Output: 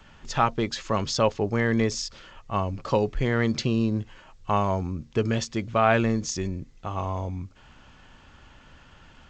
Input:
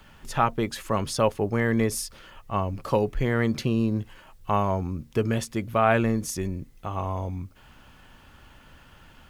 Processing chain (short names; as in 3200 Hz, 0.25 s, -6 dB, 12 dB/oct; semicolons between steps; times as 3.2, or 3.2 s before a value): dynamic EQ 4800 Hz, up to +6 dB, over -49 dBFS, Q 1.1; G.722 64 kbps 16000 Hz